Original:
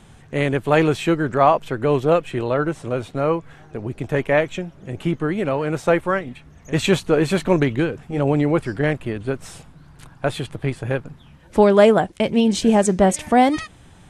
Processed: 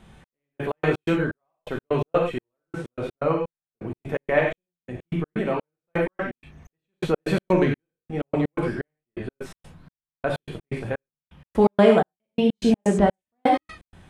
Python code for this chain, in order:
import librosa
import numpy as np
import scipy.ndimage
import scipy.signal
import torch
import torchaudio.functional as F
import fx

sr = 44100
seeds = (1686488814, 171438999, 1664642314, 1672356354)

y = fx.peak_eq(x, sr, hz=7500.0, db=-8.5, octaves=1.1)
y = fx.rev_gated(y, sr, seeds[0], gate_ms=130, shape='flat', drr_db=-0.5)
y = fx.step_gate(y, sr, bpm=126, pattern='xx...x.x.', floor_db=-60.0, edge_ms=4.5)
y = y * 10.0 ** (-5.0 / 20.0)